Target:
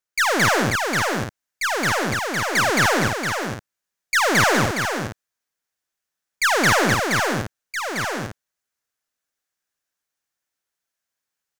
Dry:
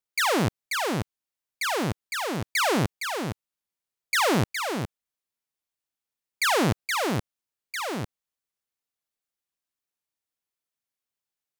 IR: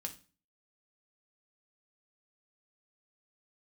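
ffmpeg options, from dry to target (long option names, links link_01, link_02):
-af "equalizer=frequency=630:width_type=o:width=0.67:gain=3,equalizer=frequency=1600:width_type=o:width=0.67:gain=8,equalizer=frequency=6300:width_type=o:width=0.67:gain=5,aeval=exprs='0.299*(cos(1*acos(clip(val(0)/0.299,-1,1)))-cos(1*PI/2))+0.00422*(cos(4*acos(clip(val(0)/0.299,-1,1)))-cos(4*PI/2))+0.00376*(cos(8*acos(clip(val(0)/0.299,-1,1)))-cos(8*PI/2))':channel_layout=same,aecho=1:1:218.7|271.1:1|0.562"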